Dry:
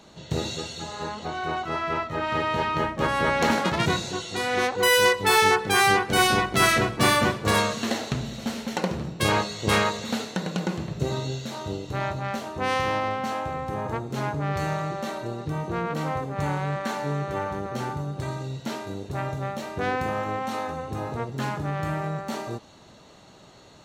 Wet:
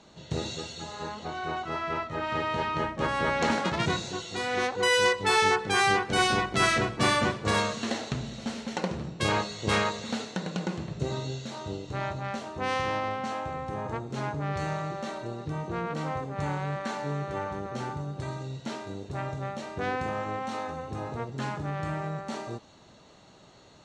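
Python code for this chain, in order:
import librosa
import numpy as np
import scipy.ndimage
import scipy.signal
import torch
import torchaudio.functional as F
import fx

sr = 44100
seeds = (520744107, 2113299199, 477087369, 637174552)

y = scipy.signal.sosfilt(scipy.signal.butter(4, 8600.0, 'lowpass', fs=sr, output='sos'), x)
y = y * 10.0 ** (-4.0 / 20.0)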